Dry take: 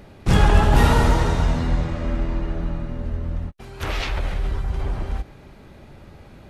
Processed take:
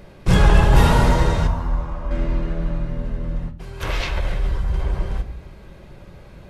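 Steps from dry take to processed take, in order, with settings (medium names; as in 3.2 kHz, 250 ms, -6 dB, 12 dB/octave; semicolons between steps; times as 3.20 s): 1.47–2.11 s: ten-band graphic EQ 125 Hz -11 dB, 250 Hz -7 dB, 500 Hz -8 dB, 1 kHz +7 dB, 2 kHz -10 dB, 4 kHz -10 dB, 8 kHz -10 dB; reverberation RT60 0.60 s, pre-delay 5 ms, DRR 8 dB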